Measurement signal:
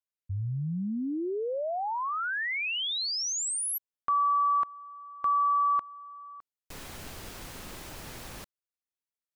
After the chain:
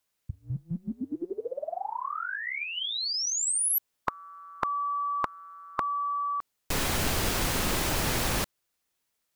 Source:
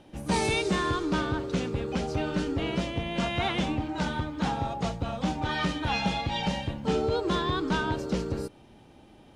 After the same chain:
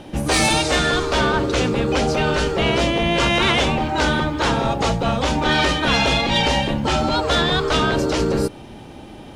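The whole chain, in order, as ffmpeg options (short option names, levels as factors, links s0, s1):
-af "afftfilt=real='re*lt(hypot(re,im),0.178)':imag='im*lt(hypot(re,im),0.178)':win_size=1024:overlap=0.75,aeval=exprs='0.126*sin(PI/2*1.58*val(0)/0.126)':c=same,volume=2.37"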